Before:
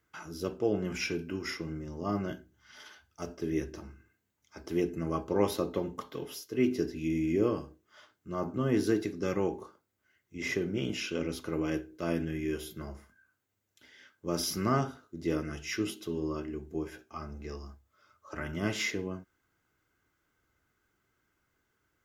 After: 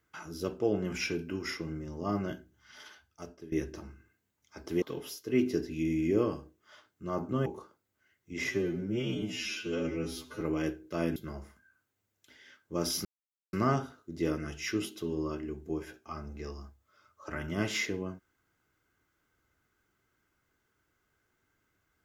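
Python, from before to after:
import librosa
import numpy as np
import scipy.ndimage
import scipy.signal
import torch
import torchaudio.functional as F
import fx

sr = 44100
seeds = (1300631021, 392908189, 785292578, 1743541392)

y = fx.edit(x, sr, fx.fade_out_to(start_s=2.87, length_s=0.65, floor_db=-17.0),
    fx.cut(start_s=4.82, length_s=1.25),
    fx.cut(start_s=8.71, length_s=0.79),
    fx.stretch_span(start_s=10.53, length_s=0.96, factor=2.0),
    fx.cut(start_s=12.24, length_s=0.45),
    fx.insert_silence(at_s=14.58, length_s=0.48), tone=tone)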